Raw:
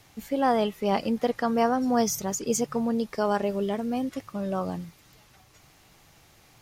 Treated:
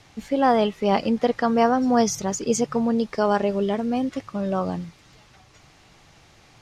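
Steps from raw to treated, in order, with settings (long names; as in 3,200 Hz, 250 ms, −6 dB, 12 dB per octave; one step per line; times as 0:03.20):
low-pass filter 6,500 Hz 12 dB per octave
level +4.5 dB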